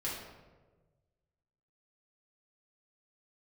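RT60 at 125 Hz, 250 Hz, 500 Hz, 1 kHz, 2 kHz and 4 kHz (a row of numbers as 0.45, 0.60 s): 2.0, 1.4, 1.5, 1.1, 0.95, 0.70 s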